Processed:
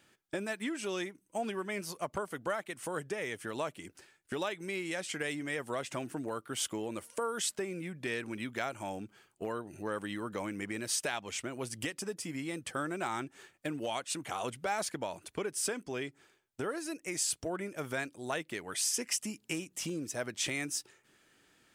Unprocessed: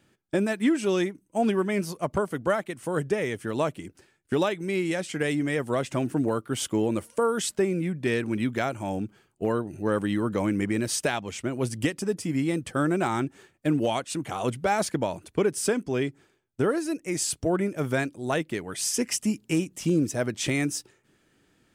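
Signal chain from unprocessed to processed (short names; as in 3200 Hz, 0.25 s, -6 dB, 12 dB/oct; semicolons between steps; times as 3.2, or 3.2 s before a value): compressor 2:1, threshold -36 dBFS, peak gain reduction 10 dB; low shelf 460 Hz -11.5 dB; gain +2.5 dB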